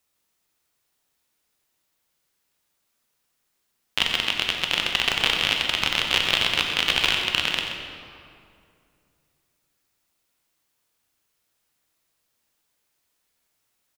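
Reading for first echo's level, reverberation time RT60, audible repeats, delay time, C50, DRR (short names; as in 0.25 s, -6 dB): -11.5 dB, 2.4 s, 2, 92 ms, 2.0 dB, 1.0 dB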